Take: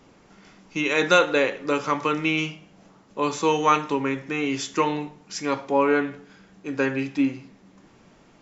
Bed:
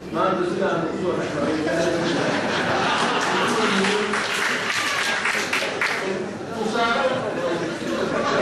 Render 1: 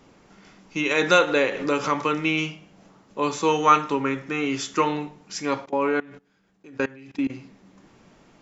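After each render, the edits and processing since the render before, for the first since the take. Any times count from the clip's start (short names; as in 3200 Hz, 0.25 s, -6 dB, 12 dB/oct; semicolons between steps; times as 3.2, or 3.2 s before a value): 0.91–2.02 upward compressor, threshold -19 dBFS; 3.48–5.06 bell 1300 Hz +8 dB 0.21 oct; 5.65–7.3 level quantiser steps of 22 dB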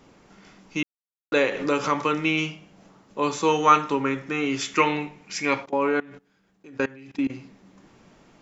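0.83–1.32 mute; 4.61–5.63 bell 2300 Hz +11.5 dB 0.56 oct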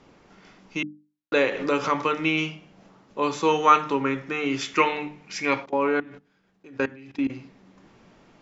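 LPF 5700 Hz 12 dB/oct; notches 50/100/150/200/250/300 Hz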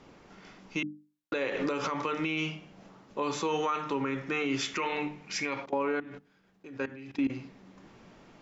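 compressor 2:1, threshold -25 dBFS, peak gain reduction 8 dB; limiter -21 dBFS, peak gain reduction 9.5 dB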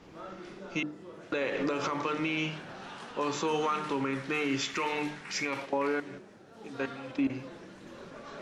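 add bed -24 dB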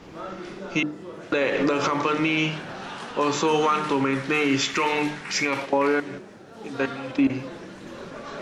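gain +8.5 dB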